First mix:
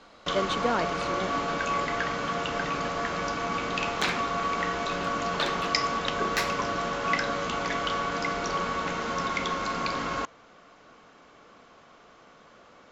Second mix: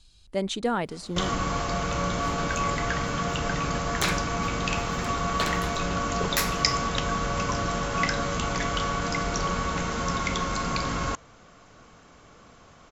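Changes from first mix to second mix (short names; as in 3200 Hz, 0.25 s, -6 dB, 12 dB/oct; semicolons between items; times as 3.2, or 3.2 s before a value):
first sound: entry +0.90 s; master: remove three-band isolator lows -14 dB, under 210 Hz, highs -15 dB, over 5300 Hz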